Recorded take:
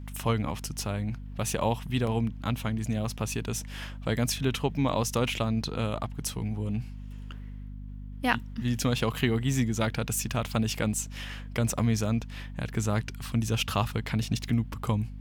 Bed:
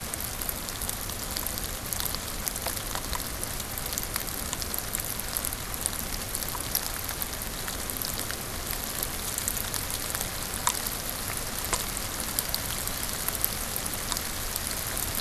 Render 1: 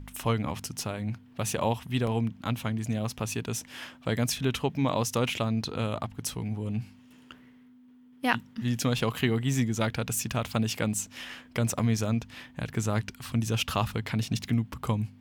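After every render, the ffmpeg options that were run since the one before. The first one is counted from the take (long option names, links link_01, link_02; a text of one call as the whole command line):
ffmpeg -i in.wav -af "bandreject=frequency=50:width_type=h:width=4,bandreject=frequency=100:width_type=h:width=4,bandreject=frequency=150:width_type=h:width=4,bandreject=frequency=200:width_type=h:width=4" out.wav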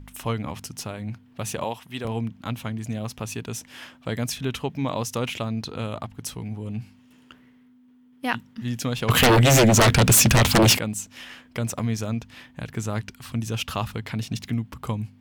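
ffmpeg -i in.wav -filter_complex "[0:a]asettb=1/sr,asplit=3[link_01][link_02][link_03];[link_01]atrim=end=1.644[link_04];[link_02]atrim=start=1.64:end=2.05,asetpts=PTS-STARTPTS,afade=type=in:duration=0.004:curve=qsin,afade=type=out:start_time=0.406:duration=0.004:curve=qsin,highpass=frequency=390:poles=1[link_05];[link_03]atrim=start=2.046[link_06];[link_04][link_05]acrossfade=duration=0.004:curve1=hsin:curve2=qsin[link_07];[link_07][link_06]acrossfade=duration=0.004:curve1=qsin:curve2=hsin,asplit=3[link_08][link_09][link_10];[link_08]afade=type=out:start_time=9.08:duration=0.02[link_11];[link_09]aeval=exprs='0.266*sin(PI/2*6.31*val(0)/0.266)':channel_layout=same,afade=type=in:start_time=9.08:duration=0.02,afade=type=out:start_time=10.77:duration=0.02[link_12];[link_10]afade=type=in:start_time=10.77:duration=0.02[link_13];[link_11][link_12][link_13]amix=inputs=3:normalize=0" out.wav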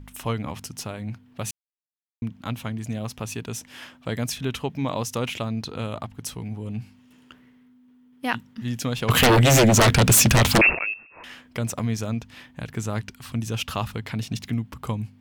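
ffmpeg -i in.wav -filter_complex "[0:a]asettb=1/sr,asplit=3[link_01][link_02][link_03];[link_01]atrim=end=10.614[link_04];[link_02]atrim=start=10.61:end=11.24,asetpts=PTS-STARTPTS,afade=type=in:duration=0.004:curve=qsin,afade=type=out:start_time=0.626:duration=0.004:curve=qsin,lowpass=frequency=2400:width_type=q:width=0.5098,lowpass=frequency=2400:width_type=q:width=0.6013,lowpass=frequency=2400:width_type=q:width=0.9,lowpass=frequency=2400:width_type=q:width=2.563,afreqshift=-2800[link_05];[link_03]atrim=start=11.236[link_06];[link_04][link_05]acrossfade=duration=0.004:curve1=hsin:curve2=qsin[link_07];[link_07][link_06]acrossfade=duration=0.004:curve1=qsin:curve2=hsin,asplit=3[link_08][link_09][link_10];[link_08]atrim=end=1.51,asetpts=PTS-STARTPTS,afade=type=out:start_time=1.506:duration=0.004:curve=hsin[link_11];[link_09]atrim=start=1.51:end=2.22,asetpts=PTS-STARTPTS,volume=0[link_12];[link_10]atrim=start=2.22,asetpts=PTS-STARTPTS,afade=type=in:duration=0.004:curve=hsin[link_13];[link_11][link_12][link_13]concat=n=3:v=0:a=1" out.wav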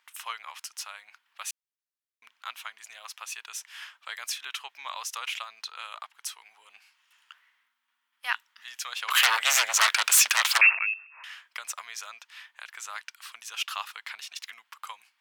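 ffmpeg -i in.wav -af "highpass=frequency=1100:width=0.5412,highpass=frequency=1100:width=1.3066,highshelf=frequency=7100:gain=-4" out.wav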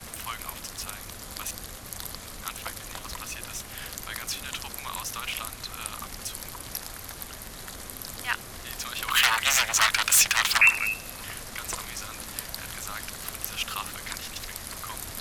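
ffmpeg -i in.wav -i bed.wav -filter_complex "[1:a]volume=-7dB[link_01];[0:a][link_01]amix=inputs=2:normalize=0" out.wav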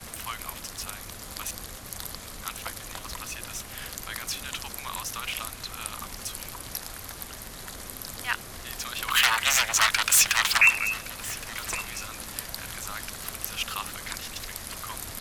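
ffmpeg -i in.wav -af "aecho=1:1:1118:0.126" out.wav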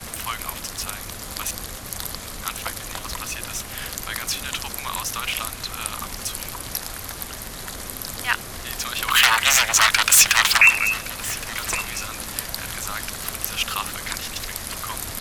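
ffmpeg -i in.wav -af "volume=6.5dB,alimiter=limit=-3dB:level=0:latency=1" out.wav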